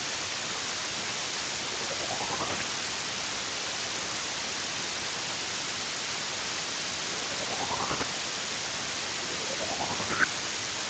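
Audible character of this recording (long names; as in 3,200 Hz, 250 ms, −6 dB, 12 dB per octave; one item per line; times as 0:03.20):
phaser sweep stages 8, 0.54 Hz, lowest notch 630–1,600 Hz
chopped level 10 Hz, depth 65%, duty 45%
a quantiser's noise floor 6 bits, dither triangular
Speex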